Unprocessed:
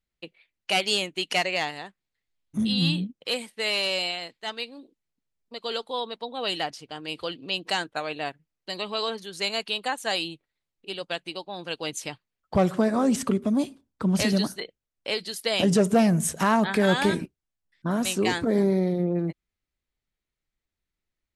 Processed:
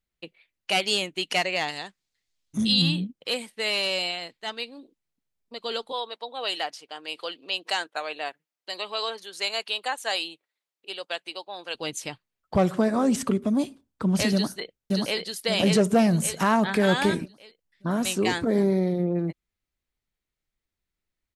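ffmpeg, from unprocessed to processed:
-filter_complex "[0:a]asettb=1/sr,asplit=3[s0][s1][s2];[s0]atrim=end=1.684[s3];[s1]atrim=start=1.68:end=2.82,asetpts=PTS-STARTPTS,afade=t=in:d=0.004:c=qsin,afade=t=out:st=1.136:d=0.004:c=qsin,equalizer=f=5800:t=o:w=1.7:g=10.5[s4];[s2]atrim=start=2.816[s5];[s3][s4]acrossfade=d=0.004:c1=hsin:c2=qsin[s6];[s6][s5]acrossfade=d=0.004:c1=qsin:c2=hsin,asettb=1/sr,asplit=3[s7][s8][s9];[s7]atrim=end=5.924[s10];[s8]atrim=start=5.92:end=11.75,asetpts=PTS-STARTPTS,afade=t=in:d=0.004:c=qsin,afade=t=out:st=5.826:d=0.004:c=qsin,highpass=470[s11];[s9]atrim=start=11.746[s12];[s10][s11]acrossfade=d=0.004:c1=hsin:c2=qsin[s13];[s13][s12]acrossfade=d=0.004:c1=qsin:c2=hsin,asplit=2[s14][s15];[s15]afade=t=in:st=14.32:d=0.01,afade=t=out:st=15.19:d=0.01,aecho=0:1:580|1160|1740|2320|2900|3480:0.841395|0.378628|0.170383|0.0766721|0.0345025|0.0155261[s16];[s14][s16]amix=inputs=2:normalize=0"

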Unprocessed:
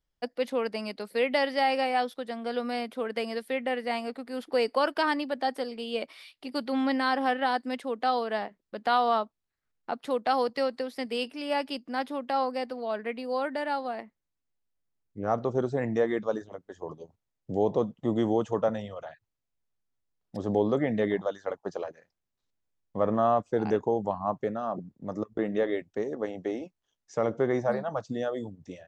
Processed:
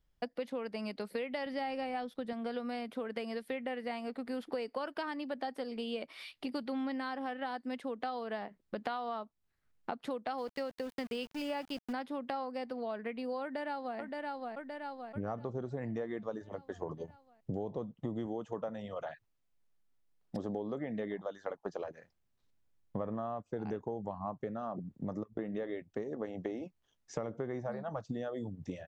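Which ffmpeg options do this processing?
-filter_complex "[0:a]asettb=1/sr,asplit=3[s0][s1][s2];[s0]atrim=end=1.464[s3];[s1]atrim=start=1.46:end=2.33,asetpts=PTS-STARTPTS,afade=t=in:d=0.004:c=qsin,afade=t=out:st=0.866:d=0.004:c=qsin,lowshelf=f=210:g=11[s4];[s2]atrim=start=2.326[s5];[s3][s4]acrossfade=d=0.004:c1=hsin:c2=qsin[s6];[s6][s5]acrossfade=d=0.004:c1=qsin:c2=hsin,asettb=1/sr,asplit=3[s7][s8][s9];[s7]atrim=end=10.384[s10];[s8]atrim=start=10.38:end=11.93,asetpts=PTS-STARTPTS,afade=t=in:d=0.004:c=qsin,afade=t=out:st=1.546:d=0.004:c=qsin,aeval=exprs='val(0)*gte(abs(val(0)),0.00944)':c=same[s11];[s9]atrim=start=11.926[s12];[s10][s11]acrossfade=d=0.004:c1=hsin:c2=qsin[s13];[s13][s12]acrossfade=d=0.004:c1=qsin:c2=hsin,asplit=2[s14][s15];[s15]afade=t=in:st=13.42:d=0.01,afade=t=out:st=13.98:d=0.01,aecho=0:1:570|1140|1710|2280|2850|3420:0.316228|0.173925|0.0956589|0.0526124|0.0289368|0.0159152[s16];[s14][s16]amix=inputs=2:normalize=0,asettb=1/sr,asplit=3[s17][s18][s19];[s17]atrim=end=18.264[s20];[s18]atrim=start=18.26:end=21.8,asetpts=PTS-STARTPTS,afade=t=in:d=0.004:c=qsin,afade=t=out:st=3.536:d=0.004:c=qsin,equalizer=f=82:t=o:w=1.4:g=-10.5[s21];[s19]atrim=start=21.796[s22];[s20][s21]acrossfade=d=0.004:c1=hsin:c2=qsin[s23];[s23][s22]acrossfade=d=0.004:c1=qsin:c2=hsin,bass=f=250:g=5,treble=f=4000:g=-4,acompressor=threshold=0.0126:ratio=8,volume=1.41"

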